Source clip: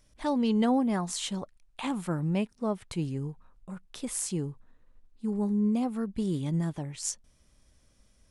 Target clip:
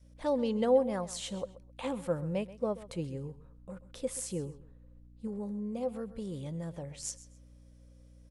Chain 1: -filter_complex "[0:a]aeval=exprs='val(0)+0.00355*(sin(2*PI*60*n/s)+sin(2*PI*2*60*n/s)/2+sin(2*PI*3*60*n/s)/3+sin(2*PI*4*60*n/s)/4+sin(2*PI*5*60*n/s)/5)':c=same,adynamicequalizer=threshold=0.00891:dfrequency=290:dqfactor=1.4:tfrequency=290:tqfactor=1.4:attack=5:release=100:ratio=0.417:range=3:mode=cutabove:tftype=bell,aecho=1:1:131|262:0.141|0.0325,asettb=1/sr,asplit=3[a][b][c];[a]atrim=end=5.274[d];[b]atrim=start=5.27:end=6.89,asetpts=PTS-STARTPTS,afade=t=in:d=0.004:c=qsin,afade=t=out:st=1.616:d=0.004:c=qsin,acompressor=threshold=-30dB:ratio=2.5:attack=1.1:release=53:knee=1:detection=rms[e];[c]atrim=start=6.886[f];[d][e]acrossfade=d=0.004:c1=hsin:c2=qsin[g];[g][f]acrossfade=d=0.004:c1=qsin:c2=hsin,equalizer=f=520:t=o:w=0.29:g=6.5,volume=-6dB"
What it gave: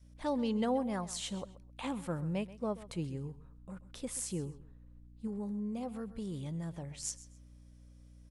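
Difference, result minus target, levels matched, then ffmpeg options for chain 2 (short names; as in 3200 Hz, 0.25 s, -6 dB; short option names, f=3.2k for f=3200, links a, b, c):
500 Hz band -4.5 dB
-filter_complex "[0:a]aeval=exprs='val(0)+0.00355*(sin(2*PI*60*n/s)+sin(2*PI*2*60*n/s)/2+sin(2*PI*3*60*n/s)/3+sin(2*PI*4*60*n/s)/4+sin(2*PI*5*60*n/s)/5)':c=same,adynamicequalizer=threshold=0.00891:dfrequency=290:dqfactor=1.4:tfrequency=290:tqfactor=1.4:attack=5:release=100:ratio=0.417:range=3:mode=cutabove:tftype=bell,aecho=1:1:131|262:0.141|0.0325,asettb=1/sr,asplit=3[a][b][c];[a]atrim=end=5.274[d];[b]atrim=start=5.27:end=6.89,asetpts=PTS-STARTPTS,afade=t=in:d=0.004:c=qsin,afade=t=out:st=1.616:d=0.004:c=qsin,acompressor=threshold=-30dB:ratio=2.5:attack=1.1:release=53:knee=1:detection=rms[e];[c]atrim=start=6.886[f];[d][e]acrossfade=d=0.004:c1=hsin:c2=qsin[g];[g][f]acrossfade=d=0.004:c1=qsin:c2=hsin,equalizer=f=520:t=o:w=0.29:g=18,volume=-6dB"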